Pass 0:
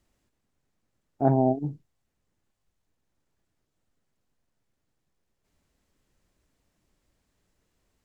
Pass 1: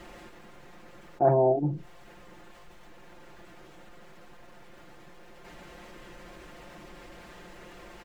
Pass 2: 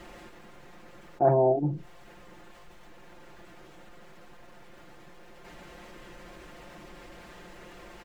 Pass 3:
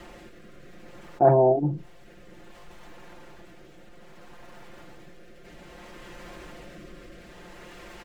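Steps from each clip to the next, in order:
bass and treble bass −10 dB, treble −15 dB; comb filter 5.7 ms, depth 79%; envelope flattener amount 50%
no processing that can be heard
rotating-speaker cabinet horn 0.6 Hz; level +5 dB

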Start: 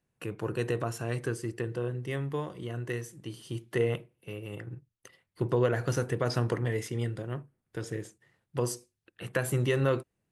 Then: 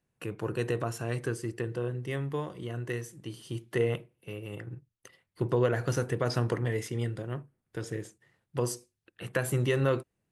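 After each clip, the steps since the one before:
no processing that can be heard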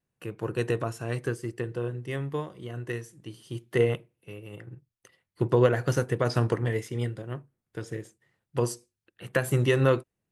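pitch vibrato 0.89 Hz 27 cents
expander for the loud parts 1.5 to 1, over −41 dBFS
level +6 dB

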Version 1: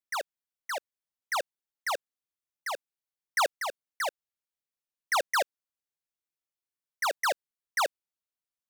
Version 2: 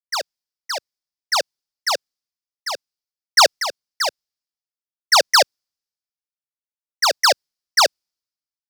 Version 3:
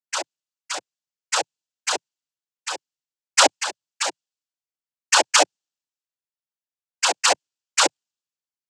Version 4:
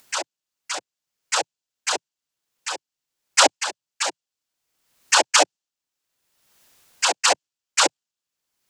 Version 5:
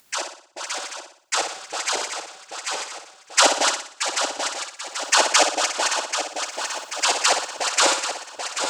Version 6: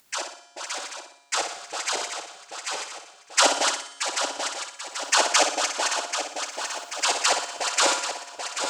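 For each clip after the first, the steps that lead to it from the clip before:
parametric band 5,000 Hz +14 dB 0.62 octaves; multiband upward and downward expander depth 70%; level +7 dB
cochlear-implant simulation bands 8; level −2.5 dB
upward compression, threshold −29 dBFS
feedback delay that plays each chunk backwards 393 ms, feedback 72%, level −6 dB; flutter between parallel walls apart 10.3 metres, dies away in 0.52 s; level −1 dB
tuned comb filter 140 Hz, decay 1.4 s, mix 60%; level +4.5 dB

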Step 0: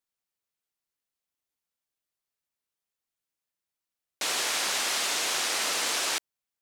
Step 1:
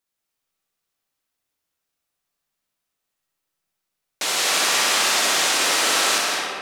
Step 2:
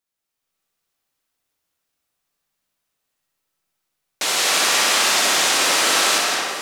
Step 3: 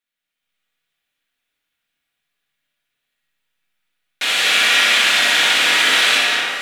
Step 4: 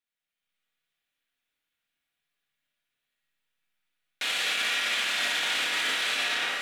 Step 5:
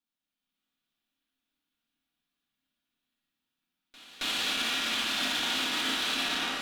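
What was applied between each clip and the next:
on a send: flutter between parallel walls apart 10.4 metres, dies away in 0.67 s; on the sum: comb and all-pass reverb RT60 2.6 s, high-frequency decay 0.45×, pre-delay 120 ms, DRR −1 dB; level +5 dB
automatic gain control gain up to 5 dB; delay that swaps between a low-pass and a high-pass 434 ms, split 1,400 Hz, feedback 74%, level −11 dB; level −2 dB
flat-topped bell 2,300 Hz +11 dB; rectangular room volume 300 cubic metres, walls furnished, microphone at 1.8 metres; level −7 dB
brickwall limiter −12 dBFS, peak gain reduction 10 dB; level −7 dB
graphic EQ with 10 bands 125 Hz −7 dB, 250 Hz +11 dB, 500 Hz −9 dB, 2,000 Hz −11 dB, 8,000 Hz −6 dB, 16,000 Hz −6 dB; harmonic generator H 8 −24 dB, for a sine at −22 dBFS; echo ahead of the sound 272 ms −20.5 dB; level +4 dB

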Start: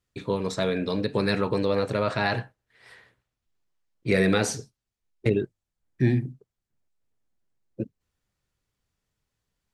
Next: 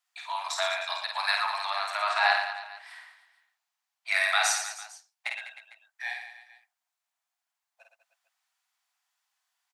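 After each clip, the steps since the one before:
Butterworth high-pass 680 Hz 96 dB per octave
on a send: reverse bouncing-ball delay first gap 50 ms, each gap 1.3×, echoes 5
on the sum: level +2.5 dB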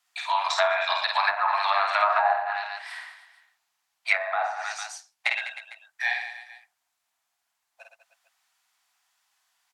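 treble cut that deepens with the level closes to 690 Hz, closed at −22 dBFS
level +8.5 dB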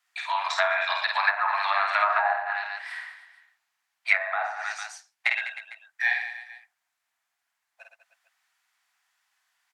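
parametric band 1,800 Hz +7.5 dB 1.1 octaves
level −4.5 dB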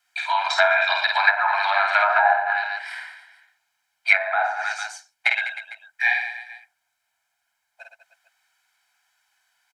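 comb filter 1.3 ms, depth 75%
level +3 dB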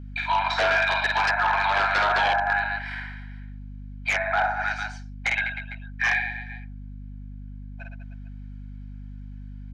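wave folding −15 dBFS
band-pass filter 460–3,400 Hz
mains hum 50 Hz, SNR 11 dB

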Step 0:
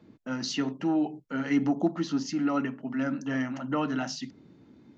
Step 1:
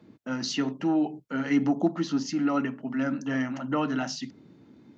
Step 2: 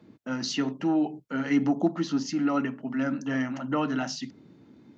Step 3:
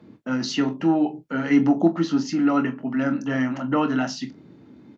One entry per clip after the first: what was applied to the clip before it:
high-pass filter 78 Hz; level +1.5 dB
no processing that can be heard
high-shelf EQ 4,600 Hz −7 dB; on a send: ambience of single reflections 24 ms −10 dB, 43 ms −16 dB; on the sum: level +5 dB

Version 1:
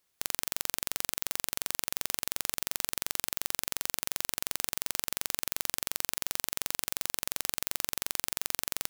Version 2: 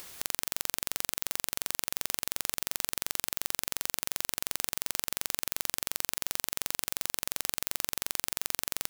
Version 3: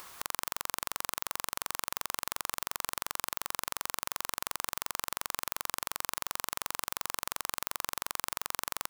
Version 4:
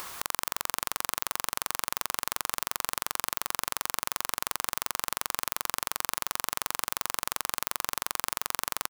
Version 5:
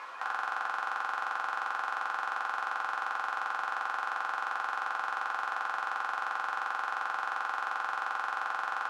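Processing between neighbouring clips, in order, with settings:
upward compression, threshold −36 dBFS; boost into a limiter +8 dB; level −1 dB
parametric band 1,100 Hz +12.5 dB 1 octave; level −4 dB
in parallel at −2.5 dB: compressor whose output falls as the input rises −41 dBFS, ratio −1; on the sum: slap from a distant wall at 84 metres, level −23 dB; level +1 dB
spectral magnitudes quantised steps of 15 dB; band-pass filter 670–2,100 Hz; rectangular room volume 150 cubic metres, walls furnished, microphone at 2.2 metres; level −2 dB

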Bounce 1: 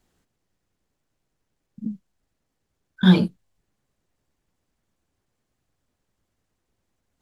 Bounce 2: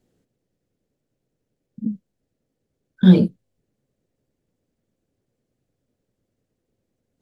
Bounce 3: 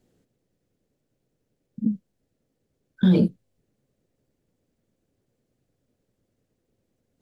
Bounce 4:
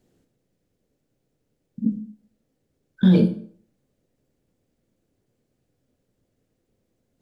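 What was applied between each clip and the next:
octave-band graphic EQ 125/250/500/1,000 Hz +8/+7/+11/−6 dB; level −5 dB
brickwall limiter −12 dBFS, peak gain reduction 10.5 dB; level +1.5 dB
convolution reverb RT60 0.55 s, pre-delay 18 ms, DRR 7.5 dB; level +1 dB

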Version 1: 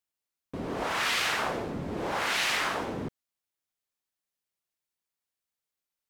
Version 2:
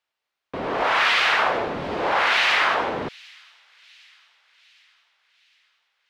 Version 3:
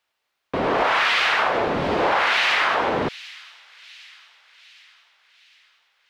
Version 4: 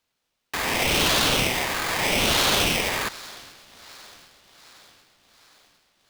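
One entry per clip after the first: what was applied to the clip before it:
in parallel at +1 dB: brickwall limiter −25.5 dBFS, peak gain reduction 9 dB; on the sum: three-way crossover with the lows and the highs turned down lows −13 dB, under 470 Hz, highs −21 dB, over 4,300 Hz; delay with a high-pass on its return 758 ms, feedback 53%, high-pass 3,400 Hz, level −19 dB; level +6.5 dB
downward compressor 6 to 1, threshold −23 dBFS, peak gain reduction 7.5 dB; level +6.5 dB
parametric band 420 Hz −6.5 dB 2.2 octaves; ring modulator with a square carrier 1,400 Hz

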